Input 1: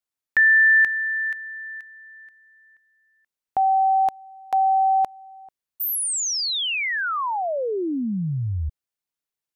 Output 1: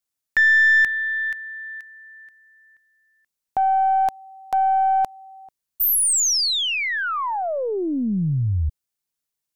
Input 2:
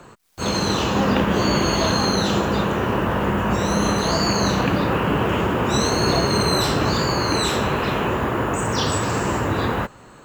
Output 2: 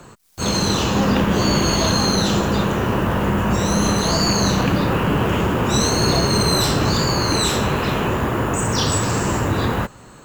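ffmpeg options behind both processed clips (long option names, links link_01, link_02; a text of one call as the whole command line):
ffmpeg -i in.wav -af "bass=frequency=250:gain=4,treble=frequency=4000:gain=6,aeval=exprs='0.708*(cos(1*acos(clip(val(0)/0.708,-1,1)))-cos(1*PI/2))+0.0355*(cos(5*acos(clip(val(0)/0.708,-1,1)))-cos(5*PI/2))+0.0158*(cos(8*acos(clip(val(0)/0.708,-1,1)))-cos(8*PI/2))':channel_layout=same,volume=-1.5dB" out.wav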